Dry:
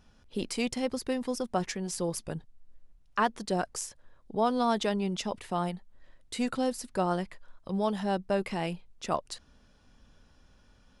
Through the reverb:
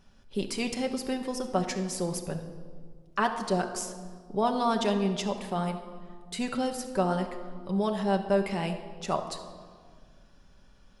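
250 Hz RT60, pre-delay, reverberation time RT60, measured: 2.1 s, 5 ms, 1.8 s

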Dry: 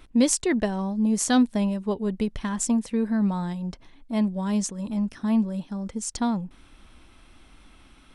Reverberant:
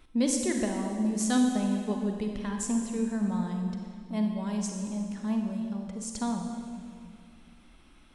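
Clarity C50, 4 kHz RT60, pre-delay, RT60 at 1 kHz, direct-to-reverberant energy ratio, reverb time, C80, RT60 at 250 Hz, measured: 3.5 dB, 1.8 s, 35 ms, 2.0 s, 2.5 dB, 2.1 s, 5.0 dB, 2.6 s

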